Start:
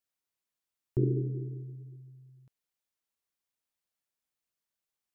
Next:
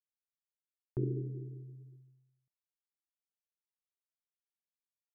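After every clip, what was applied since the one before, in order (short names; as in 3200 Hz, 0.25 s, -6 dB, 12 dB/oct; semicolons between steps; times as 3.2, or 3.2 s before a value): expander -46 dBFS; gain -6.5 dB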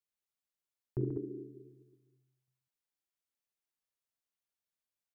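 tapped delay 42/80/136/192/195/203 ms -14/-17/-9/-16.5/-18/-11 dB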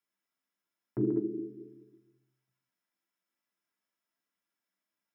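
reverb RT60 0.30 s, pre-delay 3 ms, DRR 1.5 dB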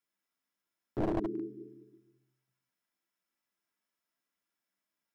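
one-sided fold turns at -29.5 dBFS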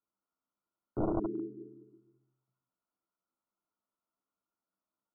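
brick-wall FIR low-pass 1500 Hz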